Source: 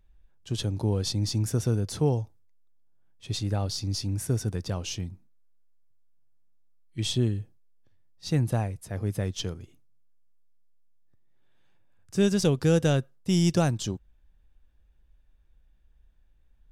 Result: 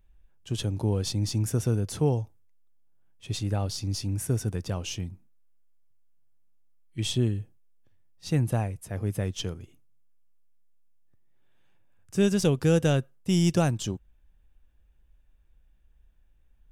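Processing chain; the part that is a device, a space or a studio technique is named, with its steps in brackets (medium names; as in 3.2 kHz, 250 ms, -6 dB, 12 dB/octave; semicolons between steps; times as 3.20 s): exciter from parts (in parallel at -8.5 dB: high-pass 2.5 kHz 24 dB/octave + saturation -26.5 dBFS, distortion -16 dB + high-pass 2.5 kHz 24 dB/octave)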